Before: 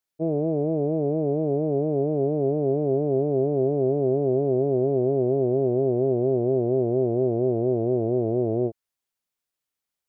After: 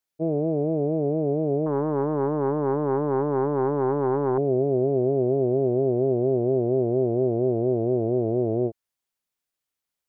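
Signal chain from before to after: 1.66–4.38 self-modulated delay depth 0.4 ms

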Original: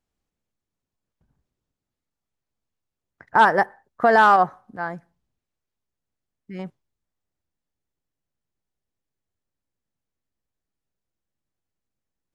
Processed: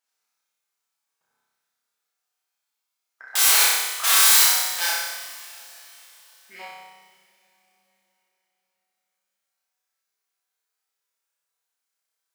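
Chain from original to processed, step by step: bell 1300 Hz +3 dB 0.22 oct; wrapped overs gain 20.5 dB; HPF 930 Hz 12 dB/oct; high shelf 4100 Hz +5.5 dB; on a send: flutter echo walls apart 5.3 m, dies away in 1.1 s; on the sum: two-slope reverb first 0.44 s, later 4.3 s, from -21 dB, DRR -1 dB; gain -1 dB

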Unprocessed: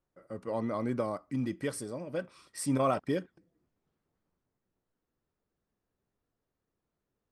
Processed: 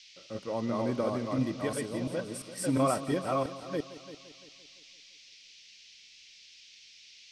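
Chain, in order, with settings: reverse delay 0.346 s, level -2 dB; band noise 2200–5900 Hz -55 dBFS; multi-head echo 0.171 s, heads first and second, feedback 42%, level -16.5 dB

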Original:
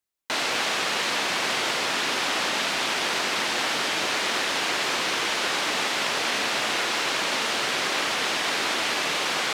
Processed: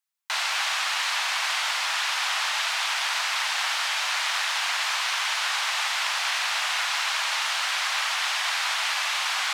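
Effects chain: inverse Chebyshev high-pass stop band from 400 Hz, stop band 40 dB

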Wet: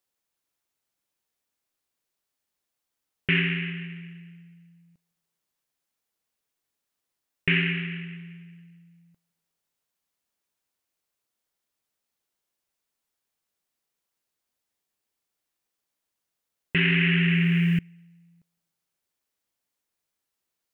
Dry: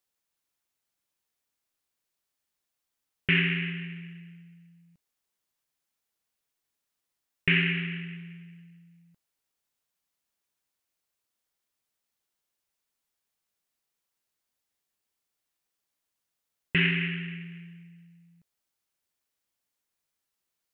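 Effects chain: bell 400 Hz +2.5 dB 2.5 oct; on a send at -22.5 dB: reverb RT60 1.1 s, pre-delay 0.153 s; 16.76–17.79 on the sum: fast leveller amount 100%

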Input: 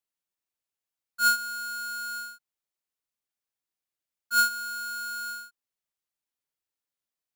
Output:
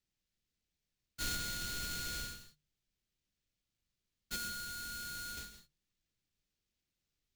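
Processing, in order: soft clip -31 dBFS, distortion -5 dB; high shelf 5900 Hz +6.5 dB, from 4.36 s -3.5 dB, from 5.37 s +7.5 dB; sample-rate reducer 11000 Hz, jitter 20%; passive tone stack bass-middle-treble 10-0-1; notches 50/100/150 Hz; reverb, pre-delay 3 ms, DRR 9 dB; gain +17 dB

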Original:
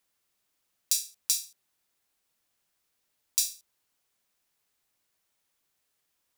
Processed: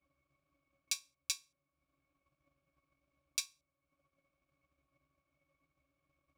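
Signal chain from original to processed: octave resonator C#, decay 0.13 s; transient shaper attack +11 dB, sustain -6 dB; gain +17 dB

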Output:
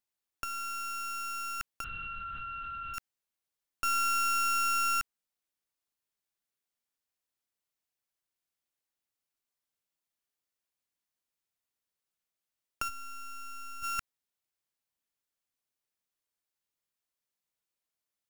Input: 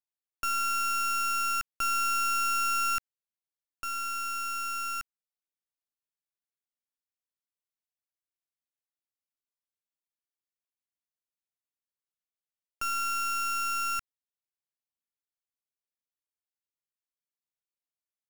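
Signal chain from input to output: 12.89–13.83 low shelf 270 Hz +11 dB; negative-ratio compressor -33 dBFS, ratio -0.5; 1.84–2.94 LPC vocoder at 8 kHz whisper

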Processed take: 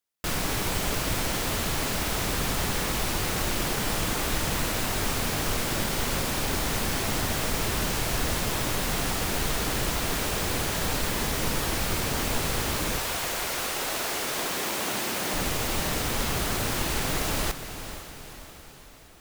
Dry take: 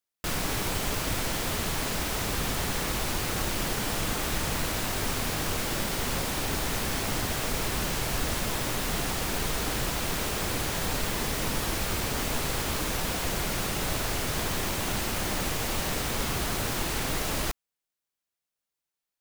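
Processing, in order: 12.98–15.33 HPF 550 Hz -> 190 Hz 12 dB/oct; diffused feedback echo 0.48 s, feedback 54%, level -11 dB; gain +1.5 dB

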